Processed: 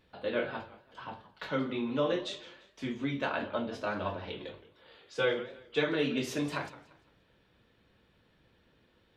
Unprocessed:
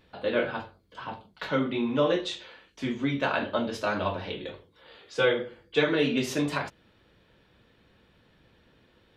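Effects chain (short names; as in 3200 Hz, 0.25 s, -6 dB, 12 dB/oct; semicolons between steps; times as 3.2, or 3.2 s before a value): 3.29–4.28 LPF 3600 Hz 6 dB/oct; warbling echo 0.172 s, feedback 32%, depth 200 cents, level -17 dB; gain -5.5 dB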